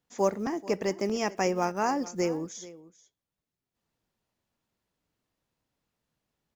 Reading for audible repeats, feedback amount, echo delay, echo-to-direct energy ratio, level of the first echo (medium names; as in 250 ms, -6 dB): 1, no regular repeats, 435 ms, -18.5 dB, -18.5 dB